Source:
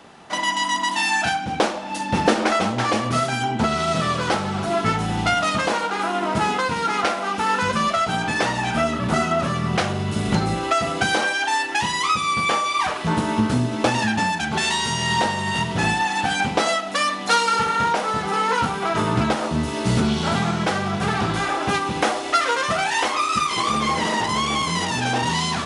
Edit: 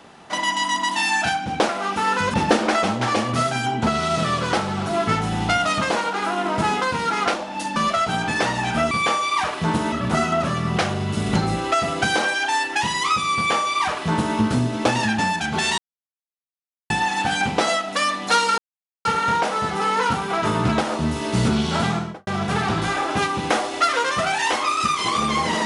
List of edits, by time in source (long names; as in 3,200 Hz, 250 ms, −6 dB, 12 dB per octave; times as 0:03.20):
0:01.69–0:02.11: swap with 0:07.11–0:07.76
0:12.34–0:13.35: duplicate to 0:08.91
0:14.77–0:15.89: silence
0:17.57: splice in silence 0.47 s
0:20.39–0:20.79: fade out and dull